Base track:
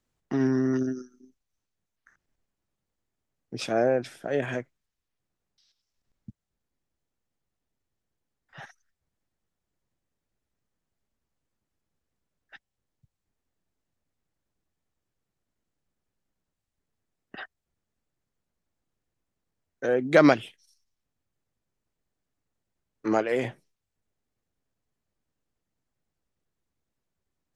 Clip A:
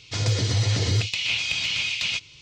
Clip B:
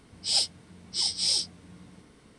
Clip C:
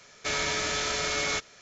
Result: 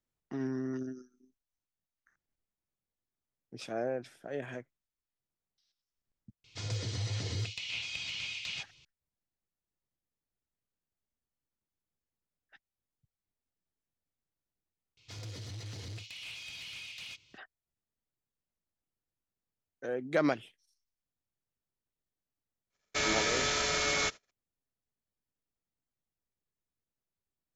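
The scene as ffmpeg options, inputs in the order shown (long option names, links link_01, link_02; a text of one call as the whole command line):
ffmpeg -i bed.wav -i cue0.wav -i cue1.wav -i cue2.wav -filter_complex "[1:a]asplit=2[link_01][link_02];[0:a]volume=-11dB[link_03];[link_02]asoftclip=type=tanh:threshold=-23dB[link_04];[3:a]agate=range=-37dB:threshold=-51dB:ratio=16:release=100:detection=peak[link_05];[link_01]atrim=end=2.41,asetpts=PTS-STARTPTS,volume=-13dB,afade=type=in:duration=0.004:curve=hsin,afade=type=out:start_time=2.406:duration=0.004:curve=hsin,adelay=6440[link_06];[link_04]atrim=end=2.41,asetpts=PTS-STARTPTS,volume=-16.5dB,afade=type=in:duration=0.004:curve=hsin,afade=type=out:start_time=2.406:duration=0.004:curve=hsin,adelay=14970[link_07];[link_05]atrim=end=1.61,asetpts=PTS-STARTPTS,volume=-1.5dB,afade=type=in:duration=0.004:curve=hsin,afade=type=out:start_time=1.606:duration=0.004:curve=hsin,adelay=22700[link_08];[link_03][link_06][link_07][link_08]amix=inputs=4:normalize=0" out.wav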